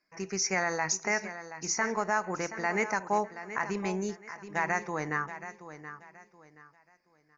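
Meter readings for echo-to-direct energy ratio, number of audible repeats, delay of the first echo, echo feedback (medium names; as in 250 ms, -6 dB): -12.0 dB, 3, 726 ms, 29%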